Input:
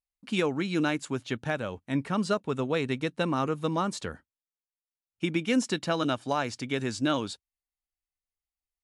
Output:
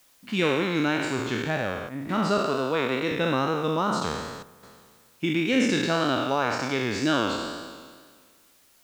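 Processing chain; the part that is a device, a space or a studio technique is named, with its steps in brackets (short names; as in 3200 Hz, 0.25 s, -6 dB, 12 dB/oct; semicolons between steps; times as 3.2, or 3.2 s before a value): spectral trails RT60 1.69 s; 2.38–3.12 HPF 170 Hz; worn cassette (LPF 6200 Hz 12 dB/oct; wow and flutter; level dips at 1.89/4.43, 0.198 s -8 dB; white noise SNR 33 dB)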